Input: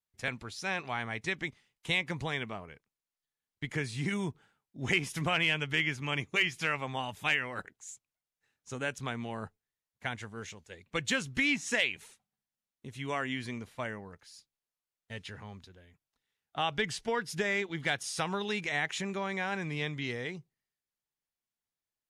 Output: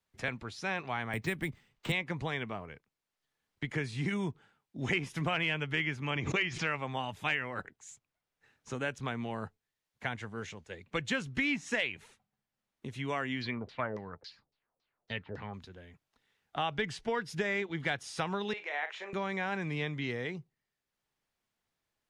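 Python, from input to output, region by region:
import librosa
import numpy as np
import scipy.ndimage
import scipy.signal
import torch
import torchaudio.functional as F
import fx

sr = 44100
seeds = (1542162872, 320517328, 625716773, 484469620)

y = fx.chain(x, sr, fx.low_shelf(hz=230.0, db=8.5),
    fx.resample_bad(factor=4, down='none', up='hold'),
    fx.band_squash(depth_pct=40), at=(1.13, 1.92))
y = fx.chain(y, sr, fx.lowpass(hz=7100.0, slope=24),
    fx.pre_swell(db_per_s=62.0), at=(6.1, 6.67))
y = fx.chain(y, sr, fx.peak_eq(hz=4300.0, db=6.0, octaves=0.48),
    fx.filter_lfo_lowpass(shape='saw_down', hz=3.6, low_hz=440.0, high_hz=5600.0, q=3.1), at=(13.41, 15.54))
y = fx.chain(y, sr, fx.highpass(hz=480.0, slope=24),
    fx.spacing_loss(db_at_10k=21),
    fx.doubler(ms=40.0, db=-10), at=(18.53, 19.13))
y = fx.lowpass(y, sr, hz=2900.0, slope=6)
y = fx.band_squash(y, sr, depth_pct=40)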